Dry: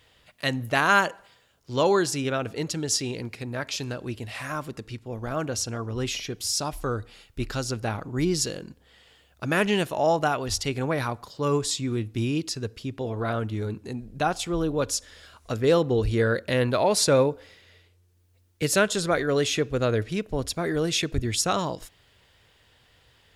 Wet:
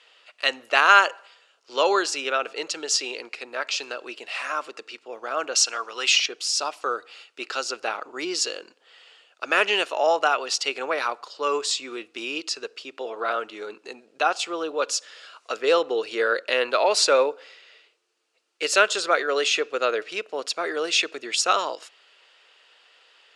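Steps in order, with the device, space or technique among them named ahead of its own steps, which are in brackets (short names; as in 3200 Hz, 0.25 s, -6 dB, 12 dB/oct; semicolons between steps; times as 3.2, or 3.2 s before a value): phone speaker on a table (speaker cabinet 410–8400 Hz, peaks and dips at 1300 Hz +7 dB, 2700 Hz +8 dB, 4500 Hz +4 dB); 5.55–6.26 tilt shelf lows -8 dB, about 750 Hz; gain +1.5 dB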